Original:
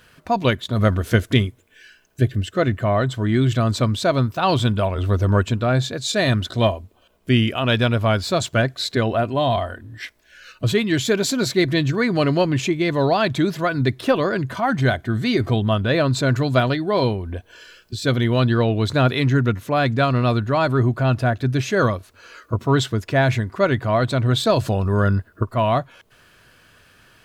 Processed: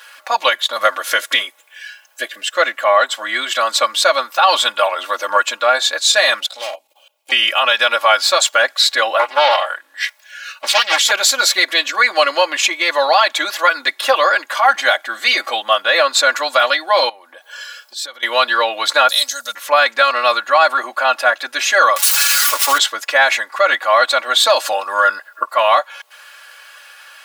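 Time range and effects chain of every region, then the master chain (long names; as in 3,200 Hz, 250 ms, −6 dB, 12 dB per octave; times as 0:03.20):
0:06.40–0:07.32: gain into a clipping stage and back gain 22.5 dB + flat-topped bell 1,400 Hz −9.5 dB 1.1 octaves + output level in coarse steps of 15 dB
0:09.19–0:11.11: low-shelf EQ 320 Hz −10.5 dB + highs frequency-modulated by the lows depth 1 ms
0:17.09–0:18.23: parametric band 2,600 Hz −6 dB 0.43 octaves + downward compressor 16 to 1, threshold −32 dBFS
0:19.09–0:19.55: drawn EQ curve 190 Hz 0 dB, 380 Hz −26 dB, 570 Hz −4 dB, 940 Hz −15 dB, 1,500 Hz −14 dB, 2,400 Hz −18 dB, 4,000 Hz +5 dB, 7,700 Hz +14 dB + upward compression, threshold −20 dBFS
0:21.96–0:22.78: spike at every zero crossing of −13.5 dBFS + high-shelf EQ 9,100 Hz −7.5 dB + comb filter 7 ms, depth 69%
whole clip: high-pass filter 720 Hz 24 dB per octave; comb filter 3.6 ms, depth 98%; boost into a limiter +11.5 dB; level −1 dB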